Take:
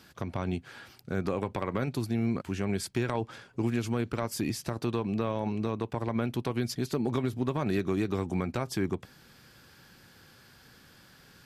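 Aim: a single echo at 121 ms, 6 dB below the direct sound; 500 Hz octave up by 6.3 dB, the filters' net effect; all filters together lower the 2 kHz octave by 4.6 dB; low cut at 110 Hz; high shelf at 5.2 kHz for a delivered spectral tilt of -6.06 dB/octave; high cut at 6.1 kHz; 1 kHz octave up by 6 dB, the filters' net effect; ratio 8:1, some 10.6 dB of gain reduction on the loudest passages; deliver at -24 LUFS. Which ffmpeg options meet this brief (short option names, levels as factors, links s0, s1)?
-af "highpass=110,lowpass=6100,equalizer=f=500:t=o:g=7,equalizer=f=1000:t=o:g=7.5,equalizer=f=2000:t=o:g=-9,highshelf=f=5200:g=-5.5,acompressor=threshold=0.0251:ratio=8,aecho=1:1:121:0.501,volume=4.47"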